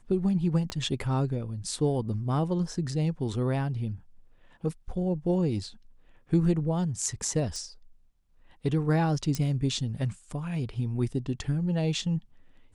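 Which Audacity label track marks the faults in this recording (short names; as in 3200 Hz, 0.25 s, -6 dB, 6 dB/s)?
0.700000	0.700000	pop -18 dBFS
7.560000	7.560000	pop -25 dBFS
9.350000	9.350000	pop -16 dBFS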